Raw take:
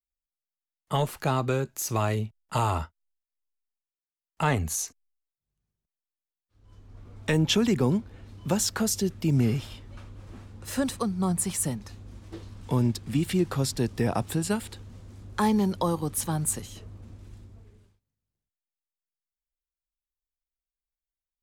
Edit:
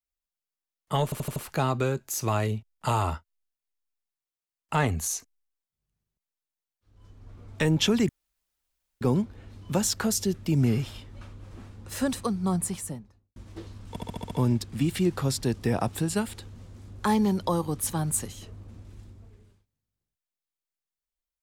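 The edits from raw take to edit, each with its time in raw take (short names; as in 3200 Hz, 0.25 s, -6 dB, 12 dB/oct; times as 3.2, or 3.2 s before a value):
1.04 stutter 0.08 s, 5 plays
7.77 insert room tone 0.92 s
11.23–12.12 studio fade out
12.65 stutter 0.07 s, 7 plays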